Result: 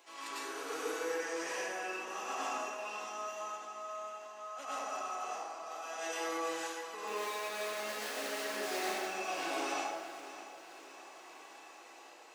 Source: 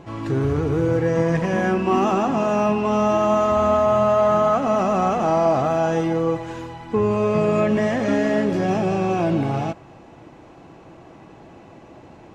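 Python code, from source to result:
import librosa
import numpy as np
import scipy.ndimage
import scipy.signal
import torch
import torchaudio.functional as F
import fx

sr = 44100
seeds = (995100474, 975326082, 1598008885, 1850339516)

y = fx.median_filter(x, sr, points=41, at=(7.07, 8.96))
y = scipy.signal.sosfilt(scipy.signal.butter(4, 300.0, 'highpass', fs=sr, output='sos'), y)
y = np.diff(y, prepend=0.0)
y = fx.hum_notches(y, sr, base_hz=60, count=7)
y = fx.over_compress(y, sr, threshold_db=-45.0, ratio=-1.0)
y = fx.tremolo_random(y, sr, seeds[0], hz=3.5, depth_pct=55)
y = fx.echo_feedback(y, sr, ms=610, feedback_pct=52, wet_db=-14)
y = fx.rev_plate(y, sr, seeds[1], rt60_s=1.5, hf_ratio=0.45, predelay_ms=85, drr_db=-9.5)
y = F.gain(torch.from_numpy(y), -2.0).numpy()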